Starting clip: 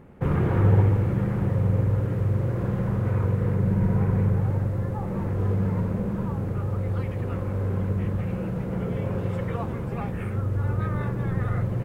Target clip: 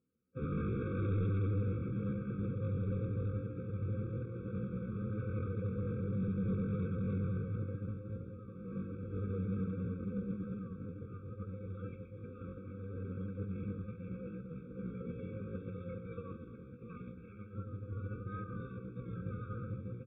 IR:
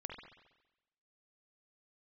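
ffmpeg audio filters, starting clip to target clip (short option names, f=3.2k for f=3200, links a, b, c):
-filter_complex "[0:a]highpass=82,atempo=0.59,aecho=1:1:3.9:0.34,asplit=2[a][b];[b]alimiter=limit=-21dB:level=0:latency=1:release=26,volume=2.5dB[c];[a][c]amix=inputs=2:normalize=0,agate=range=-33dB:threshold=-12dB:ratio=3:detection=peak,aresample=8000,volume=22.5dB,asoftclip=hard,volume=-22.5dB,aresample=44100,aecho=1:1:128:0.178,afftfilt=real='re*eq(mod(floor(b*sr/1024/540),2),0)':imag='im*eq(mod(floor(b*sr/1024/540),2),0)':win_size=1024:overlap=0.75,volume=-8dB"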